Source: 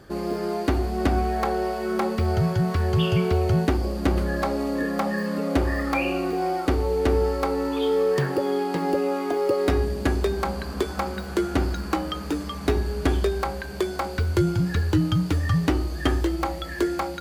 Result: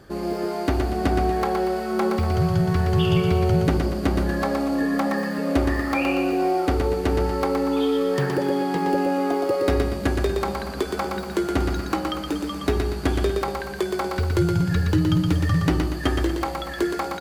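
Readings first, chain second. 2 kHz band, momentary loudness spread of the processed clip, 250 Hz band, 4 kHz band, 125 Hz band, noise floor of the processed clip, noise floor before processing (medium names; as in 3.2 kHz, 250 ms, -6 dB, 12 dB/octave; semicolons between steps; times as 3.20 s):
+1.5 dB, 6 LU, +2.5 dB, +1.5 dB, +1.5 dB, -31 dBFS, -33 dBFS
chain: feedback delay 119 ms, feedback 43%, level -4.5 dB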